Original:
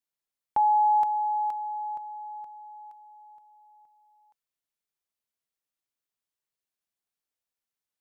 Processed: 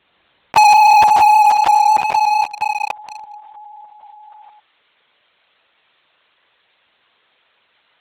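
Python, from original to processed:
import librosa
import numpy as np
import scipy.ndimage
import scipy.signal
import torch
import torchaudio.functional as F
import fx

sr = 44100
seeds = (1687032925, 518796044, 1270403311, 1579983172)

y = fx.echo_multitap(x, sr, ms=(47, 60, 141, 165, 272), db=(-9.5, -10.0, -10.0, -4.0, -17.0))
y = fx.lpc_vocoder(y, sr, seeds[0], excitation='whisper', order=16)
y = fx.leveller(y, sr, passes=5)
y = fx.highpass(y, sr, hz=fx.steps((0.0, 120.0), (3.24, 670.0)), slope=6)
y = fx.env_flatten(y, sr, amount_pct=50)
y = y * librosa.db_to_amplitude(5.5)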